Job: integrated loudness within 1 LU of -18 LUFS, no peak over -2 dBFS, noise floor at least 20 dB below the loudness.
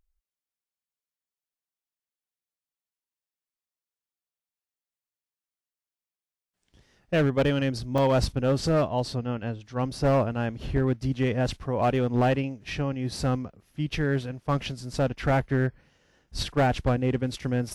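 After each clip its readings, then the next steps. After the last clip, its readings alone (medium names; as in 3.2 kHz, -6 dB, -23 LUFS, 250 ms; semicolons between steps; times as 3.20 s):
clipped samples 1.1%; clipping level -17.0 dBFS; dropouts 1; longest dropout 3.1 ms; loudness -27.0 LUFS; peak level -17.0 dBFS; loudness target -18.0 LUFS
-> clip repair -17 dBFS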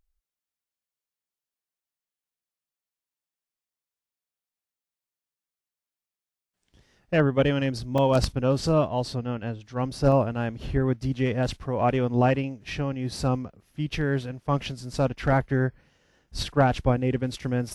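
clipped samples 0.0%; dropouts 1; longest dropout 3.1 ms
-> interpolate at 7.98 s, 3.1 ms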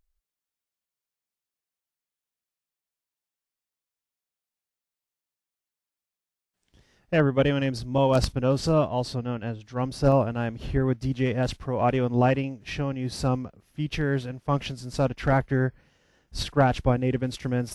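dropouts 0; loudness -26.0 LUFS; peak level -8.0 dBFS; loudness target -18.0 LUFS
-> trim +8 dB; peak limiter -2 dBFS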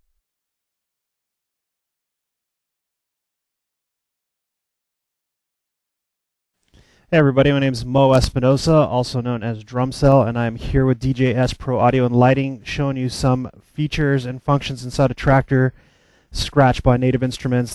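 loudness -18.0 LUFS; peak level -2.0 dBFS; noise floor -82 dBFS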